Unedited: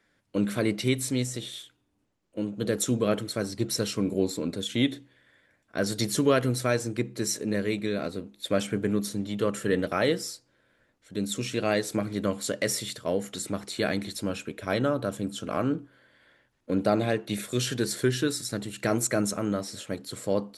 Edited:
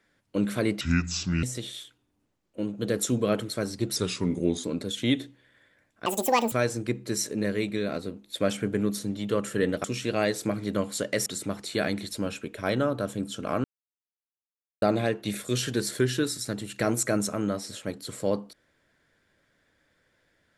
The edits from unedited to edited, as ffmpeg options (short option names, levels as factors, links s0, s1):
-filter_complex "[0:a]asplit=11[s0][s1][s2][s3][s4][s5][s6][s7][s8][s9][s10];[s0]atrim=end=0.814[s11];[s1]atrim=start=0.81:end=1.22,asetpts=PTS-STARTPTS,asetrate=29106,aresample=44100,atrim=end_sample=27395,asetpts=PTS-STARTPTS[s12];[s2]atrim=start=1.216:end=3.754[s13];[s3]atrim=start=3.75:end=4.36,asetpts=PTS-STARTPTS,asetrate=39690,aresample=44100[s14];[s4]atrim=start=4.356:end=5.784[s15];[s5]atrim=start=5.78:end=6.62,asetpts=PTS-STARTPTS,asetrate=80262,aresample=44100[s16];[s6]atrim=start=6.616:end=9.942[s17];[s7]atrim=start=11.328:end=12.752[s18];[s8]atrim=start=13.298:end=15.68,asetpts=PTS-STARTPTS,afade=t=out:st=2.378:d=0.004:c=hsin[s19];[s9]atrim=start=15.68:end=16.86,asetpts=PTS-STARTPTS,volume=0[s20];[s10]atrim=start=16.86,asetpts=PTS-STARTPTS,afade=t=in:d=0.004:c=hsin[s21];[s11][s12]acrossfade=d=0.004:c1=hsin:c2=hsin[s22];[s22][s13]acrossfade=d=0.004:c1=hsin:c2=hsin[s23];[s23][s14]acrossfade=d=0.004:c1=hsin:c2=hsin[s24];[s24][s15]acrossfade=d=0.004:c1=hsin:c2=hsin[s25];[s25][s16]acrossfade=d=0.004:c1=hsin:c2=hsin[s26];[s26][s17]acrossfade=d=0.004:c1=hsin:c2=hsin[s27];[s27][s18]acrossfade=d=0.004:c1=hsin:c2=hsin[s28];[s19][s20][s21]concat=n=3:v=0:a=1[s29];[s28][s29]acrossfade=d=0.004:c1=hsin:c2=hsin"